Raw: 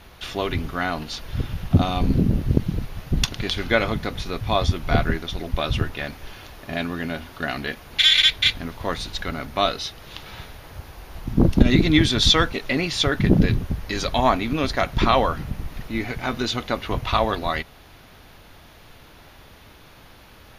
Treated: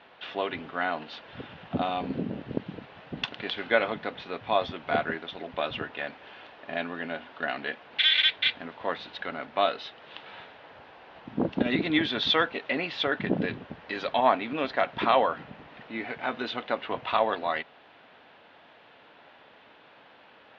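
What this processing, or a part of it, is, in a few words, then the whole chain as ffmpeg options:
phone earpiece: -af "highpass=350,equalizer=f=360:t=q:w=4:g=-5,equalizer=f=1.2k:t=q:w=4:g=-4,equalizer=f=2.2k:t=q:w=4:g=-4,lowpass=f=3.1k:w=0.5412,lowpass=f=3.1k:w=1.3066,volume=-1.5dB"

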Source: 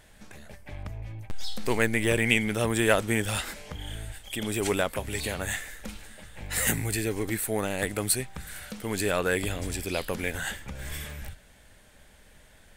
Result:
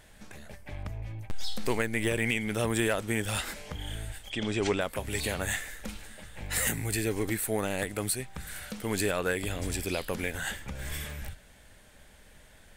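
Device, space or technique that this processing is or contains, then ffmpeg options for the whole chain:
clipper into limiter: -filter_complex "[0:a]asoftclip=type=hard:threshold=-9dB,alimiter=limit=-16.5dB:level=0:latency=1:release=339,asplit=3[a][b][c];[a]afade=t=out:st=4.29:d=0.02[d];[b]lowpass=f=6.3k:w=0.5412,lowpass=f=6.3k:w=1.3066,afade=t=in:st=4.29:d=0.02,afade=t=out:st=4.8:d=0.02[e];[c]afade=t=in:st=4.8:d=0.02[f];[d][e][f]amix=inputs=3:normalize=0"

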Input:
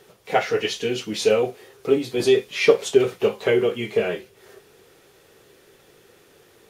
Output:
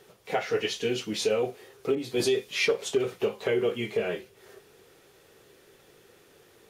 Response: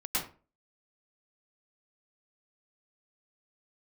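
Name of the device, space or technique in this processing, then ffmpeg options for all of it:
clipper into limiter: -filter_complex "[0:a]asoftclip=type=hard:threshold=-6.5dB,alimiter=limit=-13dB:level=0:latency=1:release=215,asettb=1/sr,asplit=3[a][b][c];[a]atrim=end=1.954[d];[b]atrim=start=1.95:end=2.67,asetpts=PTS-STARTPTS,afade=t=in:d=0.004:c=qsin,afade=t=out:st=0.716:d=0.004:c=qsin,adynamicequalizer=threshold=0.0126:dfrequency=2900:dqfactor=0.7:tfrequency=2900:tqfactor=0.7:attack=5:release=100:ratio=0.375:range=2:mode=boostabove:tftype=highshelf[e];[c]atrim=start=2.666[f];[d][e]acrossfade=d=0.004:c1=hsin:c2=qsin[g];[g][f]acrossfade=d=0.004:c1=qsin:c2=hsin,volume=-3.5dB"

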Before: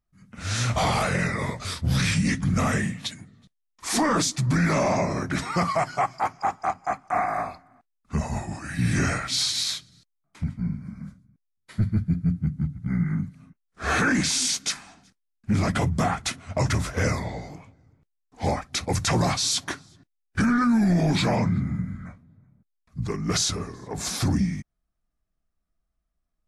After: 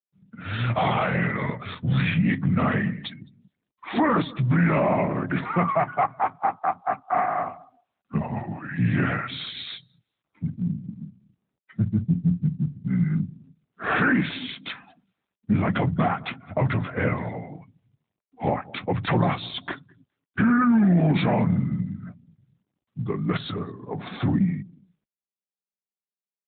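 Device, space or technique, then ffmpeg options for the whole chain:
mobile call with aggressive noise cancelling: -af "highpass=f=100:w=0.5412,highpass=f=100:w=1.3066,lowpass=5.1k,aecho=1:1:208|416:0.0891|0.0214,afftdn=nr=20:nf=-43,volume=2dB" -ar 8000 -c:a libopencore_amrnb -b:a 12200

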